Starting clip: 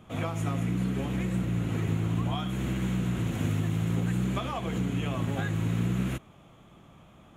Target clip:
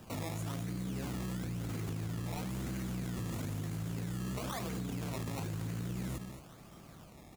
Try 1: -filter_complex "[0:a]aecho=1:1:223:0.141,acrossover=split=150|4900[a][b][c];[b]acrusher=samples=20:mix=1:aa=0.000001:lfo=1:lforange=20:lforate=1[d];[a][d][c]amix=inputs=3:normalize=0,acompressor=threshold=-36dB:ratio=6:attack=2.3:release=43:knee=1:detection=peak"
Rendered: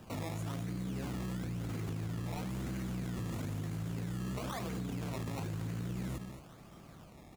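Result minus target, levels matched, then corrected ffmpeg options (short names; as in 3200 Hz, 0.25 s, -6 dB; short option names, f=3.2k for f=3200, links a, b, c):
8000 Hz band -3.5 dB
-filter_complex "[0:a]aecho=1:1:223:0.141,acrossover=split=150|4900[a][b][c];[b]acrusher=samples=20:mix=1:aa=0.000001:lfo=1:lforange=20:lforate=1[d];[a][d][c]amix=inputs=3:normalize=0,acompressor=threshold=-36dB:ratio=6:attack=2.3:release=43:knee=1:detection=peak,highshelf=f=5k:g=5"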